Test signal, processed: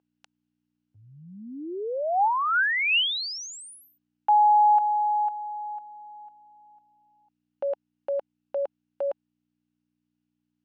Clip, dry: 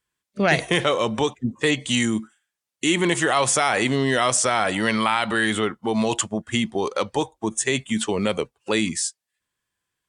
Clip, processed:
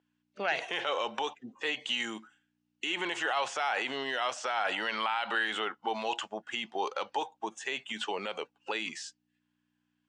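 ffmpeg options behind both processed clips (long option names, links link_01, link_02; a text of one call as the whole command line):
ffmpeg -i in.wav -filter_complex "[0:a]aeval=exprs='val(0)+0.00282*(sin(2*PI*60*n/s)+sin(2*PI*2*60*n/s)/2+sin(2*PI*3*60*n/s)/3+sin(2*PI*4*60*n/s)/4+sin(2*PI*5*60*n/s)/5)':channel_layout=same,alimiter=limit=-15dB:level=0:latency=1:release=36,highpass=470,equalizer=frequency=820:width_type=q:width=4:gain=8,equalizer=frequency=1500:width_type=q:width=4:gain=6,equalizer=frequency=2800:width_type=q:width=4:gain=8,lowpass=frequency=6500:width=0.5412,lowpass=frequency=6500:width=1.3066,acrossover=split=4000[link_01][link_02];[link_02]acompressor=threshold=-35dB:ratio=4:attack=1:release=60[link_03];[link_01][link_03]amix=inputs=2:normalize=0,volume=-7dB" out.wav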